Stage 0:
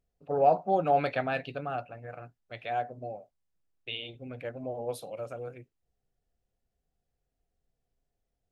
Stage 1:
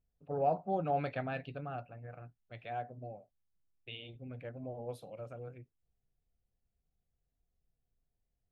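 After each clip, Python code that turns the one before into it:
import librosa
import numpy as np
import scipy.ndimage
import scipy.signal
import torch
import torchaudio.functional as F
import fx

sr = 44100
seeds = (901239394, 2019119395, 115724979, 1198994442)

y = fx.bass_treble(x, sr, bass_db=8, treble_db=-6)
y = y * librosa.db_to_amplitude(-8.5)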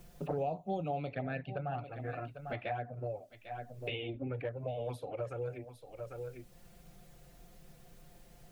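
y = fx.env_flanger(x, sr, rest_ms=5.8, full_db=-32.0)
y = y + 10.0 ** (-20.5 / 20.0) * np.pad(y, (int(798 * sr / 1000.0), 0))[:len(y)]
y = fx.band_squash(y, sr, depth_pct=100)
y = y * librosa.db_to_amplitude(5.5)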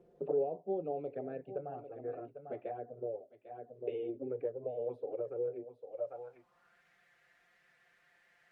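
y = fx.filter_sweep_bandpass(x, sr, from_hz=420.0, to_hz=1800.0, start_s=5.77, end_s=6.86, q=4.0)
y = y * librosa.db_to_amplitude(7.5)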